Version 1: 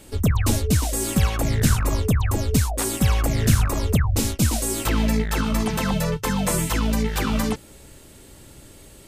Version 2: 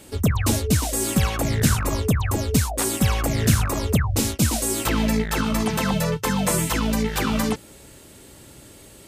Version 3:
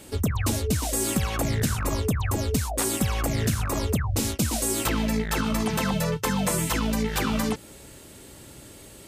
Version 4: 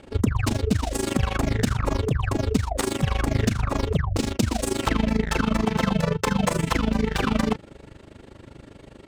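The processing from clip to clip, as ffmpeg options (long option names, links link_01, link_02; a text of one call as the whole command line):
ffmpeg -i in.wav -af "highpass=frequency=89:poles=1,volume=1.5dB" out.wav
ffmpeg -i in.wav -af "acompressor=threshold=-21dB:ratio=6" out.wav
ffmpeg -i in.wav -af "adynamicsmooth=sensitivity=4:basefreq=2600,tremolo=f=25:d=0.889,volume=6.5dB" out.wav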